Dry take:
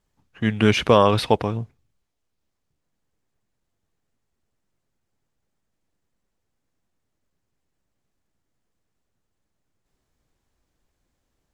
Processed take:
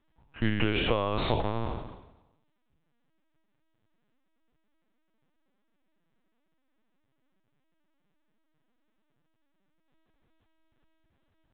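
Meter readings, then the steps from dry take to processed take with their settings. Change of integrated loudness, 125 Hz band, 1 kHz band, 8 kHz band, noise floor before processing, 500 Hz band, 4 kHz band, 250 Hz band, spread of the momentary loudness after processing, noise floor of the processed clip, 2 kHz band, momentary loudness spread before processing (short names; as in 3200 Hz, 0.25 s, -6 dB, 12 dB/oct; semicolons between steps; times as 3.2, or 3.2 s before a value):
-10.0 dB, -8.0 dB, -10.5 dB, under -35 dB, -77 dBFS, -11.5 dB, -7.0 dB, -9.0 dB, 11 LU, -75 dBFS, -6.5 dB, 11 LU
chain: spectral trails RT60 0.95 s; compressor 16:1, threshold -22 dBFS, peak gain reduction 15.5 dB; LPC vocoder at 8 kHz pitch kept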